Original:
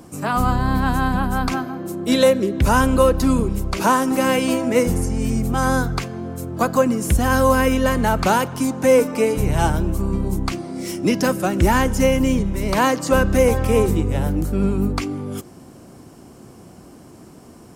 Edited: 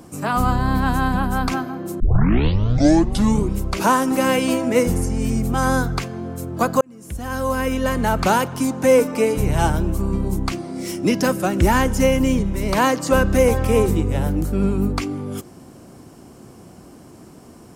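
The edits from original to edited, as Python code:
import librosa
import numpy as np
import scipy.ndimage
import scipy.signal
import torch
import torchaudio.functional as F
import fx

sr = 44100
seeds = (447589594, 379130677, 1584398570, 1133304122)

y = fx.edit(x, sr, fx.tape_start(start_s=2.0, length_s=1.54),
    fx.fade_in_span(start_s=6.81, length_s=1.43), tone=tone)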